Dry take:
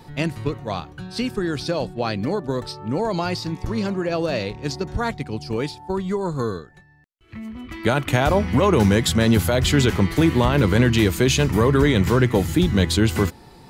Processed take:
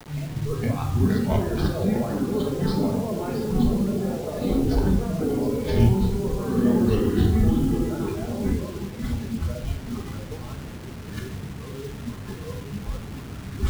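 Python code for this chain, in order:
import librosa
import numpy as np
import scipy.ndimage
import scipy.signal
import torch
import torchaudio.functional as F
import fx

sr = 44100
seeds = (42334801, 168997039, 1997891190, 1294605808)

y = fx.tracing_dist(x, sr, depth_ms=0.38)
y = scipy.signal.sosfilt(scipy.signal.butter(2, 40.0, 'highpass', fs=sr, output='sos'), y)
y = fx.echo_pitch(y, sr, ms=426, semitones=-3, count=3, db_per_echo=-3.0)
y = fx.over_compress(y, sr, threshold_db=-29.0, ratio=-1.0)
y = scipy.signal.sosfilt(scipy.signal.butter(2, 7100.0, 'lowpass', fs=sr, output='sos'), y)
y = fx.tilt_eq(y, sr, slope=-3.0)
y = fx.echo_wet_lowpass(y, sr, ms=819, feedback_pct=70, hz=3000.0, wet_db=-10.5)
y = fx.room_shoebox(y, sr, seeds[0], volume_m3=770.0, walls='mixed', distance_m=1.5)
y = fx.quant_float(y, sr, bits=4)
y = fx.noise_reduce_blind(y, sr, reduce_db=10)
y = fx.quant_dither(y, sr, seeds[1], bits=6, dither='none')
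y = y * 10.0 ** (-6.0 / 20.0)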